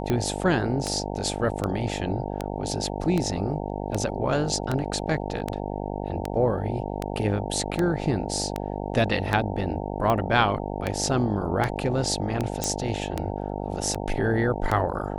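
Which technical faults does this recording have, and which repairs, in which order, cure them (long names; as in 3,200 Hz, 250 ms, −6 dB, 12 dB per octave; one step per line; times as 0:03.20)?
mains buzz 50 Hz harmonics 18 −31 dBFS
scratch tick 78 rpm −12 dBFS
0:12.64: click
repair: click removal
hum removal 50 Hz, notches 18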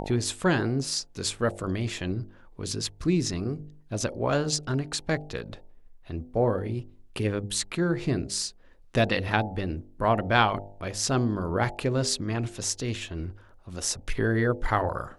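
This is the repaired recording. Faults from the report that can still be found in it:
none of them is left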